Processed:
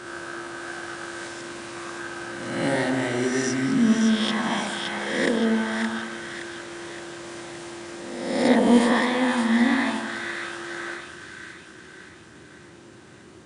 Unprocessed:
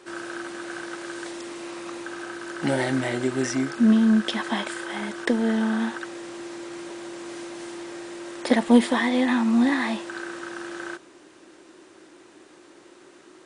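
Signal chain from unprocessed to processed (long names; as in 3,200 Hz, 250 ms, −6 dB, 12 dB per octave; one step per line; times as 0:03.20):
peak hold with a rise ahead of every peak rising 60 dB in 1.16 s
noise in a band 75–240 Hz −52 dBFS
echo with a time of its own for lows and highs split 1,400 Hz, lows 98 ms, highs 569 ms, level −4.5 dB
level −3 dB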